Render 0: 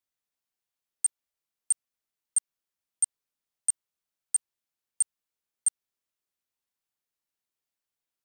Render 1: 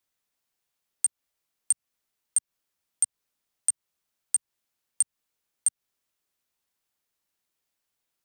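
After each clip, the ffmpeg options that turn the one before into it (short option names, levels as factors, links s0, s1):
-filter_complex "[0:a]acrossover=split=180[s0][s1];[s1]acompressor=threshold=0.0398:ratio=6[s2];[s0][s2]amix=inputs=2:normalize=0,volume=2.24"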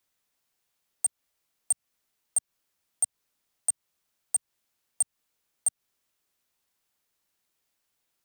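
-af "asoftclip=type=tanh:threshold=0.0841,volume=1.5"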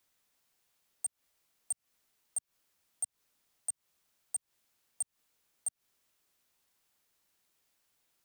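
-af "alimiter=level_in=2:limit=0.0631:level=0:latency=1:release=174,volume=0.501,volume=1.26"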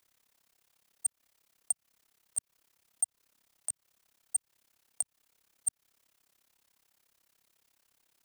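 -af "tremolo=f=34:d=0.947,volume=2.51"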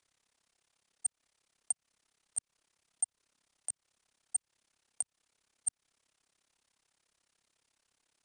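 -af "aresample=22050,aresample=44100,volume=0.75"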